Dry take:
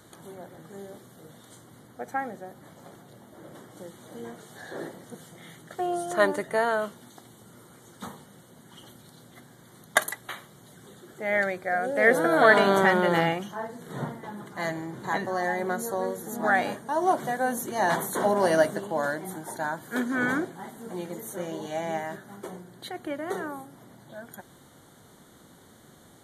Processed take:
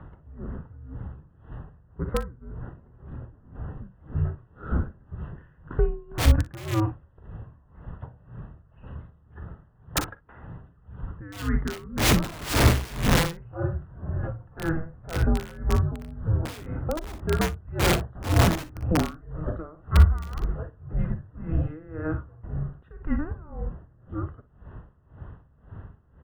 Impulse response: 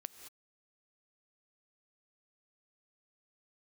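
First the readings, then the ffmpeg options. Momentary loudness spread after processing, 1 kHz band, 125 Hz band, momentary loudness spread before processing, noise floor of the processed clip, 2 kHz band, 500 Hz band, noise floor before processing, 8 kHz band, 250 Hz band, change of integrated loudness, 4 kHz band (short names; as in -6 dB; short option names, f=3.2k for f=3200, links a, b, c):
23 LU, -7.0 dB, +15.0 dB, 22 LU, -58 dBFS, -7.5 dB, -6.5 dB, -54 dBFS, +2.5 dB, +1.5 dB, -1.0 dB, +5.0 dB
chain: -filter_complex "[0:a]highpass=f=160:t=q:w=0.5412,highpass=f=160:t=q:w=1.307,lowpass=f=2.4k:t=q:w=0.5176,lowpass=f=2.4k:t=q:w=0.7071,lowpass=f=2.4k:t=q:w=1.932,afreqshift=-320,asplit=2[a][b];[b]acompressor=threshold=-37dB:ratio=6,volume=2dB[c];[a][c]amix=inputs=2:normalize=0,aeval=exprs='(mod(6.31*val(0)+1,2)-1)/6.31':c=same,equalizer=f=66:w=0.38:g=13,asplit=2[d][e];[e]aecho=0:1:42|58:0.211|0.237[f];[d][f]amix=inputs=2:normalize=0,aeval=exprs='val(0)*pow(10,-22*(0.5-0.5*cos(2*PI*1.9*n/s))/20)':c=same"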